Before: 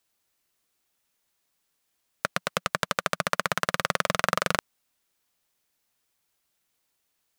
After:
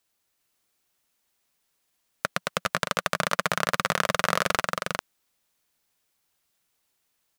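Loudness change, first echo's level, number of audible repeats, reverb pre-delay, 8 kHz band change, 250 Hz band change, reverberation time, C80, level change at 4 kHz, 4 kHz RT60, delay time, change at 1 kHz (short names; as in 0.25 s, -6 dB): +1.0 dB, -4.0 dB, 1, none, +1.5 dB, +1.0 dB, none, none, +1.5 dB, none, 0.402 s, +1.5 dB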